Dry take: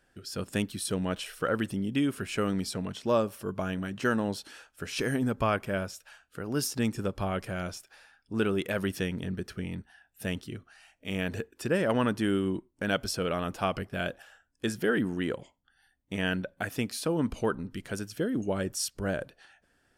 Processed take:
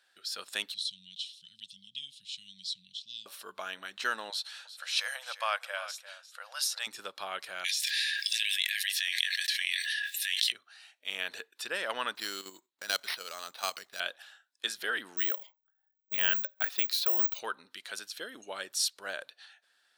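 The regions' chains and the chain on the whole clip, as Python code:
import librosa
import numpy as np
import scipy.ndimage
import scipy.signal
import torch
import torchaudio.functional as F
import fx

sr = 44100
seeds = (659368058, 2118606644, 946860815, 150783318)

y = fx.chain(x, sr, fx.cheby1_bandstop(low_hz=180.0, high_hz=3200.0, order=4),
    fx.air_absorb(metres=97.0), at=(0.74, 3.26))
y = fx.chain(y, sr, fx.brickwall_bandpass(low_hz=490.0, high_hz=13000.0),
    fx.echo_single(ms=348, db=-14.0), at=(4.3, 6.87))
y = fx.chain(y, sr, fx.brickwall_highpass(low_hz=1600.0),
    fx.doubler(ms=20.0, db=-13.0),
    fx.env_flatten(amount_pct=100), at=(7.64, 10.52))
y = fx.chain(y, sr, fx.low_shelf(hz=230.0, db=2.5),
    fx.level_steps(step_db=9),
    fx.resample_bad(factor=6, down='none', up='hold'), at=(12.15, 14.0))
y = fx.chain(y, sr, fx.env_lowpass(base_hz=380.0, full_db=-29.0),
    fx.resample_bad(factor=2, down='filtered', up='zero_stuff'), at=(15.17, 17.39))
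y = scipy.signal.sosfilt(scipy.signal.butter(2, 1000.0, 'highpass', fs=sr, output='sos'), y)
y = fx.peak_eq(y, sr, hz=3900.0, db=13.0, octaves=0.45)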